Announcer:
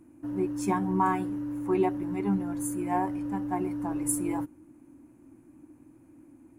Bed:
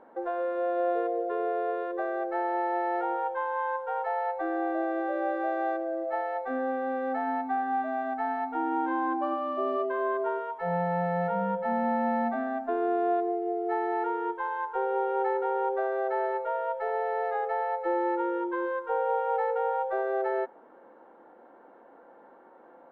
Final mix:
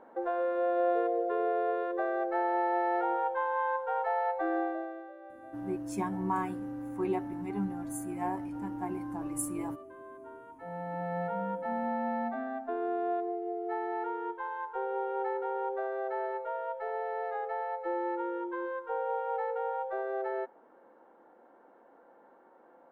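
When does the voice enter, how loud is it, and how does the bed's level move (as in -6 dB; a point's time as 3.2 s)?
5.30 s, -6.0 dB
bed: 4.58 s -0.5 dB
5.18 s -20 dB
10.19 s -20 dB
11.16 s -5.5 dB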